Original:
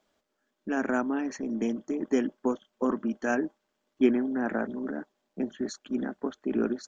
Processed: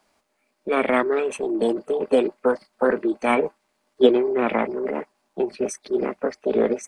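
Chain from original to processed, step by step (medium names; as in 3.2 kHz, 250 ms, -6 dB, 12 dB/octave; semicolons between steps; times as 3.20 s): formant shift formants +6 st; trim +7.5 dB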